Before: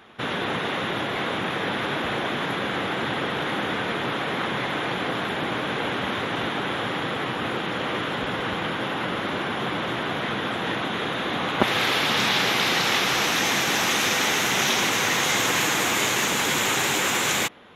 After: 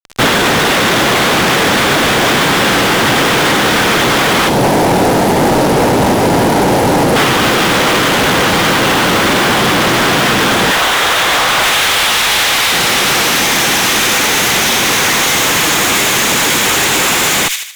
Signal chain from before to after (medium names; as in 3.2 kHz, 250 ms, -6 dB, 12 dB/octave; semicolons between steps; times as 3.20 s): 4.49–7.16 s: spectral selection erased 1–8.2 kHz; 10.71–12.73 s: high-pass 650 Hz 12 dB/octave; fuzz box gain 44 dB, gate -40 dBFS; feedback echo behind a high-pass 77 ms, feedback 43%, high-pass 2.5 kHz, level -8.5 dB; loudness maximiser +16 dB; trim -5.5 dB